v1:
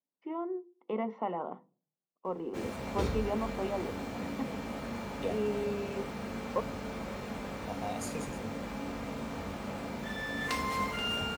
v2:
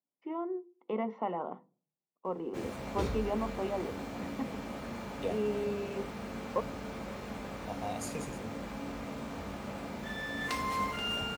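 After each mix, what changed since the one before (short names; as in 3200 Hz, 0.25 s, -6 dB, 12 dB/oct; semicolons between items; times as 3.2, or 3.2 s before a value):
background: send -11.0 dB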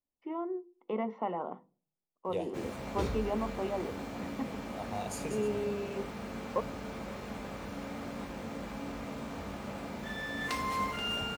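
second voice: entry -2.90 s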